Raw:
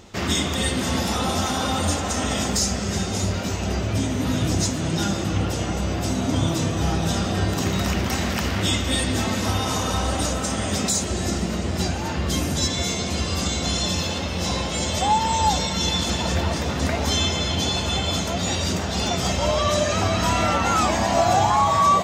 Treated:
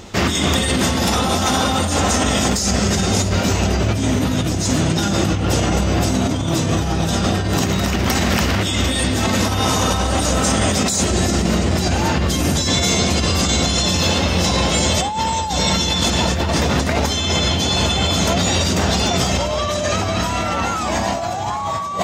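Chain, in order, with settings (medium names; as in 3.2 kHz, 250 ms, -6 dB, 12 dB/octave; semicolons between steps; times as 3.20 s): compressor with a negative ratio -25 dBFS, ratio -1; trim +7 dB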